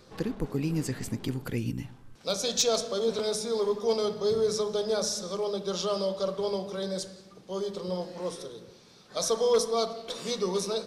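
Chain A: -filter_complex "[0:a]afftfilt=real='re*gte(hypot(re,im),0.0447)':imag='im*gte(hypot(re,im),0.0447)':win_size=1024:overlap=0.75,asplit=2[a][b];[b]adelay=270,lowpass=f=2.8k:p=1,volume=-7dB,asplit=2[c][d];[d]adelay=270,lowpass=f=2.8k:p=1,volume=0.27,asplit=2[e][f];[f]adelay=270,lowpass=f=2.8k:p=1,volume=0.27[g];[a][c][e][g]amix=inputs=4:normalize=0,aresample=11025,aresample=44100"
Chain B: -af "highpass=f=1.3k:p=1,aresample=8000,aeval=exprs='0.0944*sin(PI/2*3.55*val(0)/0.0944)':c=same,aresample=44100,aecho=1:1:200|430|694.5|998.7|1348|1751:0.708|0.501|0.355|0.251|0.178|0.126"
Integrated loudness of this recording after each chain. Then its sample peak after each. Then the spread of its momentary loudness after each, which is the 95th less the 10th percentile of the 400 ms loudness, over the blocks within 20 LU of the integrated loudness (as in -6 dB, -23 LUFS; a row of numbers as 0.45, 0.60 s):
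-30.5, -24.5 LUFS; -14.5, -11.0 dBFS; 11, 8 LU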